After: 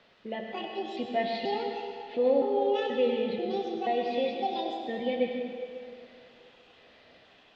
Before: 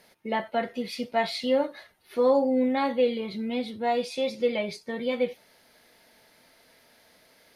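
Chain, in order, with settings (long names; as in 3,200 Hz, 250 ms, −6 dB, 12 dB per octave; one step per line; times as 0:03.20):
pitch shifter gated in a rhythm +8 semitones, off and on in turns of 483 ms
in parallel at +2 dB: downward compressor, threshold −38 dBFS, peak gain reduction 19 dB
on the sum: flat-topped bell 1,200 Hz −16 dB 1 octave
automatic gain control gain up to 4.5 dB
bit-depth reduction 8 bits, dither triangular
low-pass filter 3,400 Hz 24 dB per octave
low-shelf EQ 320 Hz −4 dB
notch filter 2,200 Hz, Q 8.5
on a send at −2 dB: convolution reverb RT60 2.4 s, pre-delay 85 ms
on the sum: level −8 dB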